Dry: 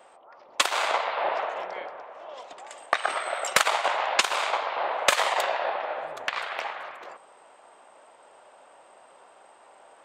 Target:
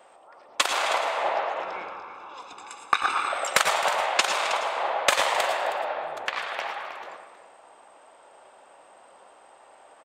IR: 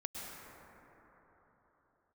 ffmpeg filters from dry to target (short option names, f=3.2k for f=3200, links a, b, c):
-filter_complex "[0:a]asettb=1/sr,asplit=3[a][b][c];[a]atrim=end=1.624[d];[b]atrim=start=1.62:end=3.32,asetpts=PTS-STARTPTS,afade=t=in:d=0.004:c=qsin,afade=t=out:st=1.696:d=0.004:c=qsin,aecho=1:1:0.8:0.85,atrim=end_sample=74970[e];[c]atrim=start=3.316[f];[d][e]acrossfade=d=0.004:c1=hsin:c2=qsin[g];[g][f]acrossfade=d=0.004:c1=qsin:c2=hsin,aecho=1:1:90|263|317:0.211|0.158|0.251[h];[1:a]atrim=start_sample=2205,afade=t=out:st=0.17:d=0.01,atrim=end_sample=7938[i];[h][i]afir=irnorm=-1:irlink=0,volume=4dB"